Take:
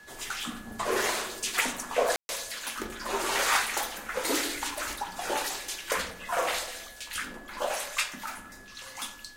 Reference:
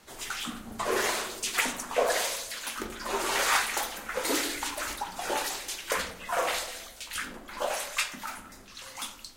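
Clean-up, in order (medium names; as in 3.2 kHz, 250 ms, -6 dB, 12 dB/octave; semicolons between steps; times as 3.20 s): clip repair -13 dBFS; band-stop 1.7 kHz, Q 30; room tone fill 2.16–2.29 s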